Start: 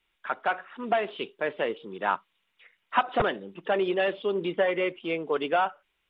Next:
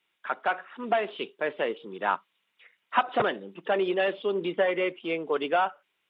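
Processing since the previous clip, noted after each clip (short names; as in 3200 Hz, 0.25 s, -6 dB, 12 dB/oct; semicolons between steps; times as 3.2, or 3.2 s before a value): HPF 160 Hz 12 dB/oct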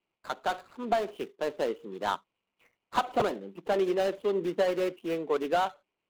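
median filter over 25 samples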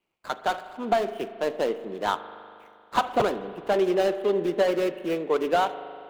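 spring tank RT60 2.4 s, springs 39 ms, chirp 55 ms, DRR 12 dB; gain +4 dB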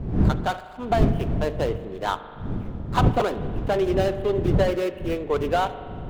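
wind noise 160 Hz -26 dBFS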